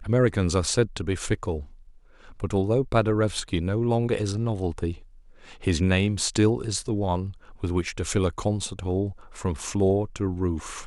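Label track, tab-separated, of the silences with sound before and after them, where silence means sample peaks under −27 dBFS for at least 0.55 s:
1.590000	2.440000	silence
4.920000	5.670000	silence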